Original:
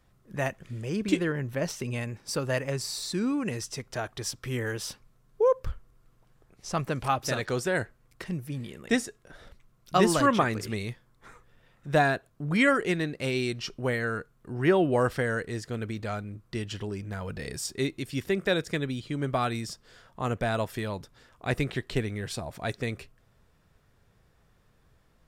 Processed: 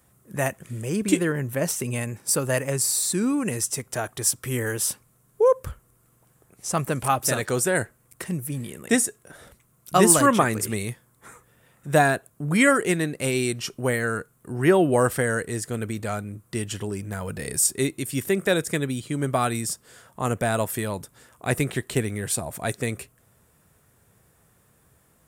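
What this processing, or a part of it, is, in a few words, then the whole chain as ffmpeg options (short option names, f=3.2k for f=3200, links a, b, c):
budget condenser microphone: -af "highpass=77,highshelf=f=6.6k:t=q:w=1.5:g=11.5,volume=4.5dB"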